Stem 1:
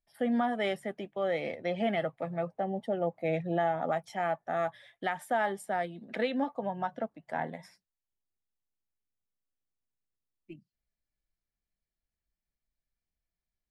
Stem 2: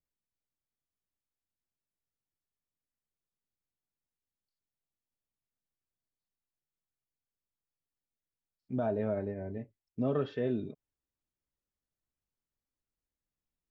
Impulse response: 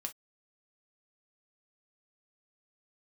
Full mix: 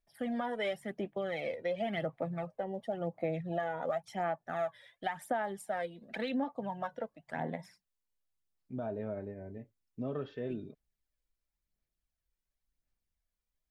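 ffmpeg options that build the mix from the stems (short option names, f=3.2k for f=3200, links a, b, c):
-filter_complex "[0:a]aphaser=in_gain=1:out_gain=1:delay=2.1:decay=0.57:speed=0.93:type=sinusoidal,volume=-3.5dB[a];[1:a]volume=-6dB[b];[a][b]amix=inputs=2:normalize=0,acompressor=threshold=-30dB:ratio=6"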